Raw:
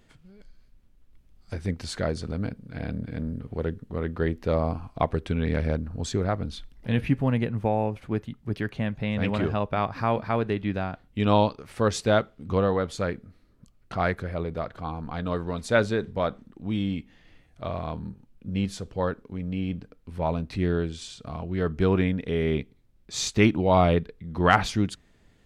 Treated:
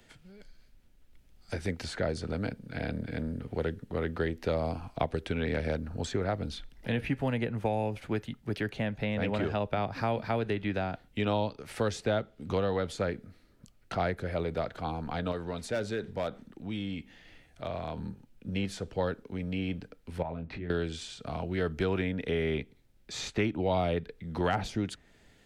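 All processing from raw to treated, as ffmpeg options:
ffmpeg -i in.wav -filter_complex "[0:a]asettb=1/sr,asplit=3[link_01][link_02][link_03];[link_01]atrim=end=15.314[link_04];[link_02]atrim=start=15.31:end=17.97,asetpts=PTS-STARTPTS,afade=type=in:duration=0.004:curve=qsin,afade=type=out:start_time=2.656:duration=0.004:curve=qsin,acompressor=threshold=-40dB:ratio=1.5:attack=3.2:release=140:knee=1:detection=peak,volume=25.5dB,asoftclip=hard,volume=-25.5dB[link_05];[link_03]atrim=start=17.966[link_06];[link_04][link_05]acrossfade=duration=0.004:curve1=hsin:curve2=qsin[link_07];[link_07][link_06]acrossfade=duration=0.004:curve1=qsin:curve2=hsin,asettb=1/sr,asplit=3[link_08][link_09][link_10];[link_08]atrim=end=20.224[link_11];[link_09]atrim=start=20.22:end=20.7,asetpts=PTS-STARTPTS,afade=type=in:duration=0.004:curve=qsin,afade=type=out:start_time=0.476:duration=0.004:curve=qsin,lowpass=2000,acompressor=threshold=-38dB:ratio=3:attack=3.2:release=140:knee=1:detection=peak,asplit=2[link_12][link_13];[link_13]adelay=24,volume=-6dB[link_14];[link_12][link_14]amix=inputs=2:normalize=0,atrim=end_sample=21168[link_15];[link_10]atrim=start=20.696[link_16];[link_11][link_15]acrossfade=duration=0.004:curve1=hsin:curve2=qsin[link_17];[link_17][link_16]acrossfade=duration=0.004:curve1=qsin:curve2=hsin,equalizer=frequency=1100:width=5.2:gain=-7.5,acrossover=split=130|260|780|2500[link_18][link_19][link_20][link_21][link_22];[link_18]acompressor=threshold=-34dB:ratio=4[link_23];[link_19]acompressor=threshold=-38dB:ratio=4[link_24];[link_20]acompressor=threshold=-32dB:ratio=4[link_25];[link_21]acompressor=threshold=-43dB:ratio=4[link_26];[link_22]acompressor=threshold=-49dB:ratio=4[link_27];[link_23][link_24][link_25][link_26][link_27]amix=inputs=5:normalize=0,lowshelf=frequency=380:gain=-7.5,volume=4.5dB" out.wav

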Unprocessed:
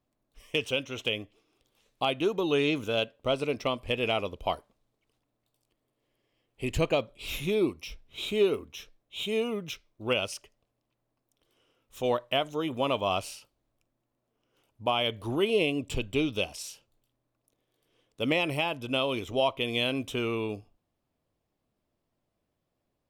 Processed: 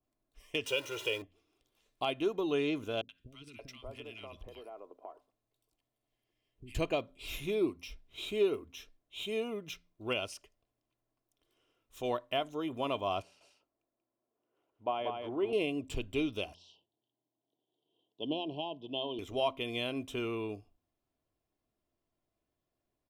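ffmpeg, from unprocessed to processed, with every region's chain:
ffmpeg -i in.wav -filter_complex "[0:a]asettb=1/sr,asplit=3[link_01][link_02][link_03];[link_01]atrim=end=0.664[link_04];[link_02]atrim=start=0.66:end=1.22,asetpts=PTS-STARTPTS,afade=type=in:duration=0.004:curve=qsin,afade=type=out:start_time=0.556:duration=0.004:curve=qsin,aeval=exprs='val(0)+0.5*0.0141*sgn(val(0))':channel_layout=same,highpass=frequency=310:poles=1,aecho=1:1:2.1:0.99,atrim=end_sample=24696[link_05];[link_03]atrim=start=1.216[link_06];[link_04][link_05]acrossfade=duration=0.004:curve1=hsin:curve2=qsin[link_07];[link_07][link_06]acrossfade=duration=0.004:curve1=qsin:curve2=hsin,asettb=1/sr,asplit=3[link_08][link_09][link_10];[link_08]atrim=end=3.014[link_11];[link_09]atrim=start=3.01:end=6.75,asetpts=PTS-STARTPTS,afade=type=in:duration=0.004:curve=qsin,afade=type=out:start_time=3.736:duration=0.004:curve=qsin,acompressor=threshold=-36dB:ratio=5:attack=3.2:release=140:knee=1:detection=peak,acrossover=split=300|1400[link_12][link_13][link_14];[link_14]adelay=80[link_15];[link_13]adelay=580[link_16];[link_12][link_16][link_15]amix=inputs=3:normalize=0,atrim=end_sample=164934[link_17];[link_10]atrim=start=6.746[link_18];[link_11][link_17]acrossfade=duration=0.004:curve1=hsin:curve2=qsin[link_19];[link_19][link_18]acrossfade=duration=0.004:curve1=qsin:curve2=hsin,asettb=1/sr,asplit=3[link_20][link_21][link_22];[link_20]atrim=end=13.224[link_23];[link_21]atrim=start=13.22:end=15.53,asetpts=PTS-STARTPTS,afade=type=in:duration=0.004:curve=qsin,afade=type=out:start_time=2.306:duration=0.004:curve=qsin,bandpass=frequency=560:width_type=q:width=0.63,aecho=1:1:186:0.596,atrim=end_sample=101871[link_24];[link_22]atrim=start=15.526[link_25];[link_23][link_24]acrossfade=duration=0.004:curve1=hsin:curve2=qsin[link_26];[link_26][link_25]acrossfade=duration=0.004:curve1=qsin:curve2=hsin,asettb=1/sr,asplit=3[link_27][link_28][link_29];[link_27]atrim=end=16.544[link_30];[link_28]atrim=start=16.54:end=19.19,asetpts=PTS-STARTPTS,afade=type=in:duration=0.004:curve=qsin,afade=type=out:start_time=2.646:duration=0.004:curve=qsin,asuperstop=centerf=1700:order=12:qfactor=0.88,highpass=frequency=150:width=0.5412,highpass=frequency=150:width=1.3066,equalizer=frequency=240:width_type=q:width=4:gain=-4,equalizer=frequency=540:width_type=q:width=4:gain=-6,equalizer=frequency=3100:width_type=q:width=4:gain=3,lowpass=frequency=3400:width=0.5412,lowpass=frequency=3400:width=1.3066[link_31];[link_29]atrim=start=19.186[link_32];[link_30][link_31]acrossfade=duration=0.004:curve1=hsin:curve2=qsin[link_33];[link_33][link_32]acrossfade=duration=0.004:curve1=qsin:curve2=hsin,aecho=1:1:2.9:0.31,bandreject=frequency=87.44:width_type=h:width=4,bandreject=frequency=174.88:width_type=h:width=4,bandreject=frequency=262.32:width_type=h:width=4,adynamicequalizer=threshold=0.00891:dfrequency=1800:dqfactor=0.7:tfrequency=1800:tqfactor=0.7:attack=5:release=100:ratio=0.375:range=2.5:mode=cutabove:tftype=highshelf,volume=-6dB" out.wav

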